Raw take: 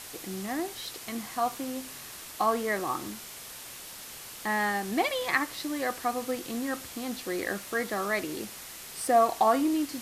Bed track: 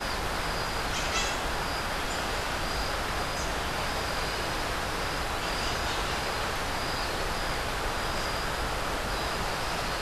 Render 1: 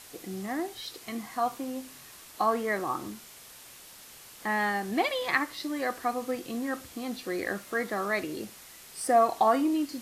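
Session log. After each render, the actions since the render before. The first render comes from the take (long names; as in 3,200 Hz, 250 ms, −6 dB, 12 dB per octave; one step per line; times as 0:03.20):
noise reduction from a noise print 6 dB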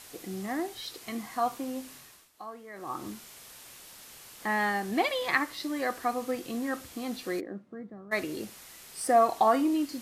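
0:01.93–0:03.10: duck −16.5 dB, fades 0.37 s
0:07.39–0:08.11: resonant band-pass 320 Hz → 100 Hz, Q 1.8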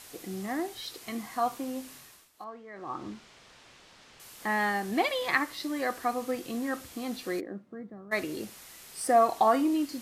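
0:02.44–0:04.20: high-frequency loss of the air 130 metres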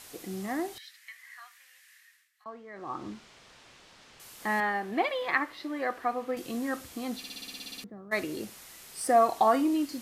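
0:00.78–0:02.46: four-pole ladder high-pass 1,700 Hz, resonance 75%
0:04.60–0:06.37: bass and treble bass −7 dB, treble −14 dB
0:07.18: stutter in place 0.06 s, 11 plays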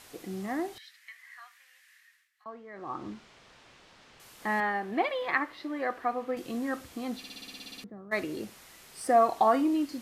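high-shelf EQ 4,600 Hz −7 dB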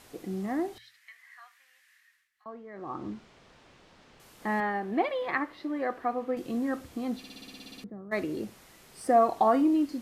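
tilt shelving filter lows +4 dB, about 760 Hz
mains-hum notches 60/120 Hz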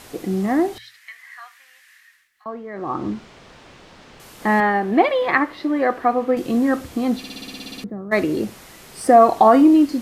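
level +12 dB
brickwall limiter −3 dBFS, peak gain reduction 2 dB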